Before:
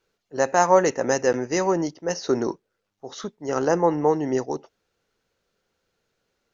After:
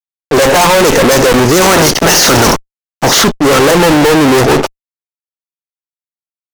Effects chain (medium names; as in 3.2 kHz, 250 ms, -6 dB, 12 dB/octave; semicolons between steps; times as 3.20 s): 1.61–3.22 s: spectral peaks clipped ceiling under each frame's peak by 20 dB; valve stage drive 24 dB, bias 0.75; fuzz box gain 56 dB, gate -58 dBFS; trim +7 dB